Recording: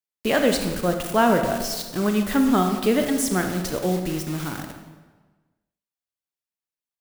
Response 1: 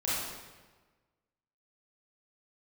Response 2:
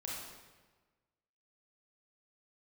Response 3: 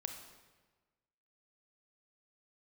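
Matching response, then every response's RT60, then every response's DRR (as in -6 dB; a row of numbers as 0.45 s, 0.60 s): 3; 1.3 s, 1.3 s, 1.3 s; -9.5 dB, -5.0 dB, 4.5 dB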